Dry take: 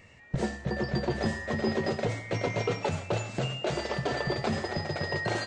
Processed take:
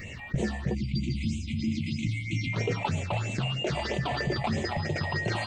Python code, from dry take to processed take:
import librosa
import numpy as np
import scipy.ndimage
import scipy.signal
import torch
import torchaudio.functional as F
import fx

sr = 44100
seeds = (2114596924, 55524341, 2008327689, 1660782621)

y = fx.brickwall_bandstop(x, sr, low_hz=340.0, high_hz=2000.0, at=(0.73, 2.52), fade=0.02)
y = fx.phaser_stages(y, sr, stages=6, low_hz=370.0, high_hz=1400.0, hz=3.1, feedback_pct=25)
y = fx.env_flatten(y, sr, amount_pct=50)